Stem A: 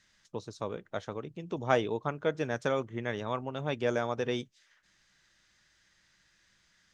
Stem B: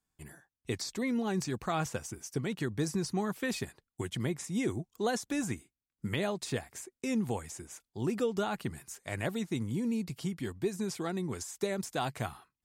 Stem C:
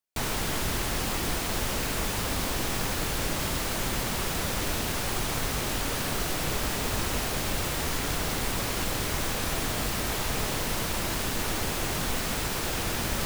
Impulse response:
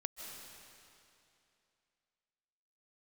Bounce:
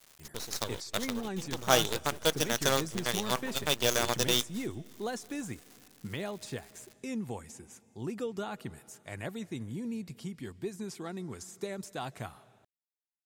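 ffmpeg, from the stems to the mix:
-filter_complex "[0:a]lowshelf=f=330:g=-5.5,aexciter=amount=9.5:drive=1.2:freq=3200,acrusher=bits=5:dc=4:mix=0:aa=0.000001,volume=1.19,asplit=2[s0][s1];[s1]volume=0.0668[s2];[1:a]volume=0.501,asplit=2[s3][s4];[s4]volume=0.188[s5];[3:a]atrim=start_sample=2205[s6];[s2][s5]amix=inputs=2:normalize=0[s7];[s7][s6]afir=irnorm=-1:irlink=0[s8];[s0][s3][s8]amix=inputs=3:normalize=0"

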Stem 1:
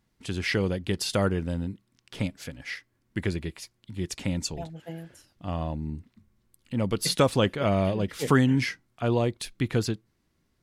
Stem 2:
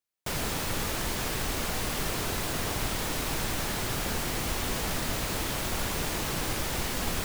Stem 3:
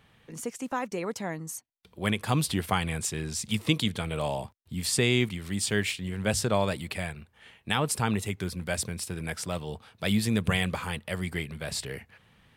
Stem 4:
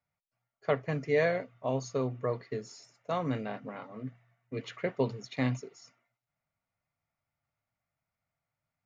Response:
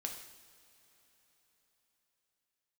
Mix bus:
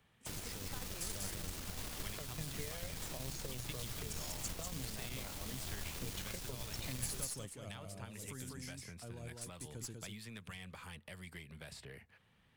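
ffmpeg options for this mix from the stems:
-filter_complex "[0:a]highshelf=f=5300:t=q:w=1.5:g=13,volume=0.119,asplit=2[s0][s1];[s1]volume=0.447[s2];[1:a]alimiter=limit=0.0891:level=0:latency=1:release=249,volume=0.266,asplit=2[s3][s4];[s4]volume=0.188[s5];[2:a]acrossover=split=1100|2700[s6][s7][s8];[s6]acompressor=threshold=0.0141:ratio=4[s9];[s7]acompressor=threshold=0.0141:ratio=4[s10];[s8]acompressor=threshold=0.00562:ratio=4[s11];[s9][s10][s11]amix=inputs=3:normalize=0,volume=0.299,asplit=2[s12][s13];[3:a]acompressor=threshold=0.0126:ratio=6,adelay=1500,volume=1.06[s14];[s13]apad=whole_len=468356[s15];[s0][s15]sidechaincompress=threshold=0.00501:ratio=8:attack=16:release=888[s16];[s2][s5]amix=inputs=2:normalize=0,aecho=0:1:195:1[s17];[s16][s3][s12][s14][s17]amix=inputs=5:normalize=0,acrossover=split=140|3000[s18][s19][s20];[s19]acompressor=threshold=0.00316:ratio=4[s21];[s18][s21][s20]amix=inputs=3:normalize=0,aeval=exprs='0.0447*(cos(1*acos(clip(val(0)/0.0447,-1,1)))-cos(1*PI/2))+0.00631*(cos(4*acos(clip(val(0)/0.0447,-1,1)))-cos(4*PI/2))':c=same"

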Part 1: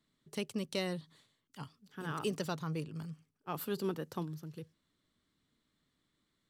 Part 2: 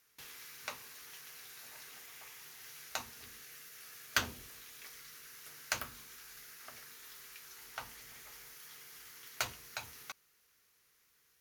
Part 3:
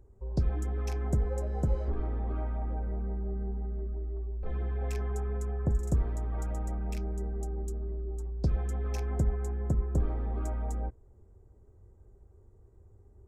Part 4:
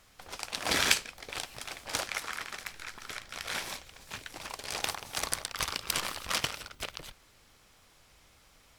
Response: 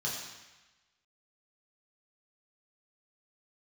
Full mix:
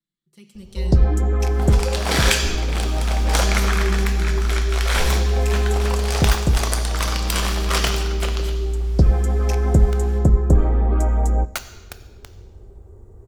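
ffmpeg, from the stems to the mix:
-filter_complex "[0:a]equalizer=f=770:w=0.79:g=-13.5,aecho=1:1:5.8:0.79,volume=0.251,asplit=2[s0][s1];[s1]volume=0.251[s2];[1:a]acrusher=bits=4:mix=0:aa=0.000001,adelay=2150,volume=0.531,asplit=2[s3][s4];[s4]volume=0.211[s5];[2:a]adelay=550,volume=1.19,asplit=2[s6][s7];[s7]volume=0.1[s8];[3:a]adelay=1400,volume=1,asplit=2[s9][s10];[s10]volume=0.398[s11];[4:a]atrim=start_sample=2205[s12];[s2][s5][s8][s11]amix=inputs=4:normalize=0[s13];[s13][s12]afir=irnorm=-1:irlink=0[s14];[s0][s3][s6][s9][s14]amix=inputs=5:normalize=0,dynaudnorm=f=410:g=3:m=4.47"

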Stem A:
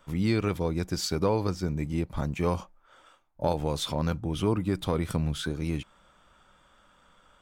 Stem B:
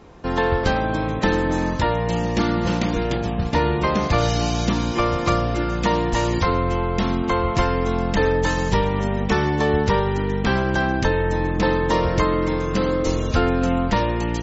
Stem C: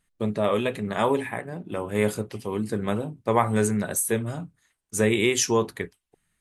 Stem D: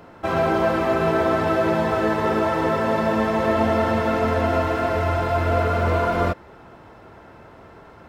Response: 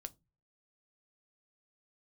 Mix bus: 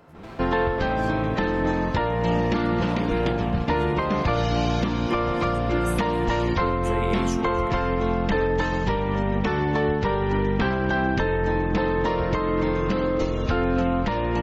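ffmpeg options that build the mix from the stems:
-filter_complex "[0:a]acompressor=threshold=0.0447:ratio=6,volume=0.15,asplit=2[s0][s1];[1:a]lowpass=3500,equalizer=f=78:w=1.5:g=-3,adelay=150,volume=1.26,asplit=2[s2][s3];[s3]volume=0.1[s4];[2:a]highshelf=f=9200:g=-10,adelay=1900,volume=0.376,asplit=2[s5][s6];[s6]volume=0.0944[s7];[3:a]acompressor=threshold=0.0398:ratio=12,asoftclip=type=hard:threshold=0.02,volume=0.422[s8];[s1]apad=whole_len=366407[s9];[s5][s9]sidechaincompress=threshold=0.00141:ratio=8:attack=16:release=117[s10];[s4][s7]amix=inputs=2:normalize=0,aecho=0:1:266|532|798|1064|1330|1596|1862:1|0.49|0.24|0.118|0.0576|0.0282|0.0138[s11];[s0][s2][s10][s8][s11]amix=inputs=5:normalize=0,alimiter=limit=0.224:level=0:latency=1:release=402"

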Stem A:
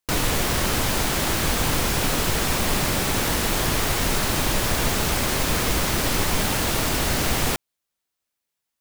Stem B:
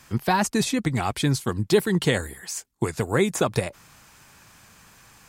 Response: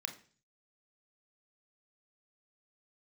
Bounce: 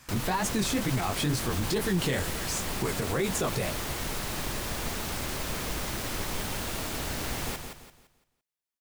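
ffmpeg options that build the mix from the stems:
-filter_complex "[0:a]volume=0.266,asplit=2[s0][s1];[s1]volume=0.447[s2];[1:a]flanger=delay=15.5:depth=7.6:speed=2.1,volume=1.19[s3];[s2]aecho=0:1:170|340|510|680|850:1|0.34|0.116|0.0393|0.0134[s4];[s0][s3][s4]amix=inputs=3:normalize=0,alimiter=limit=0.112:level=0:latency=1:release=25"

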